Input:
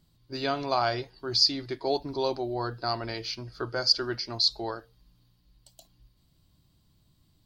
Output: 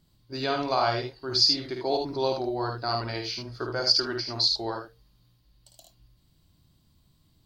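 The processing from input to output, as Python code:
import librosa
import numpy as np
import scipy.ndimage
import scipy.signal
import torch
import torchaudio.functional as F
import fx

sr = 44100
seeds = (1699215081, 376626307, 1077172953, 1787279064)

y = fx.room_early_taps(x, sr, ms=(53, 77), db=(-6.0, -6.0))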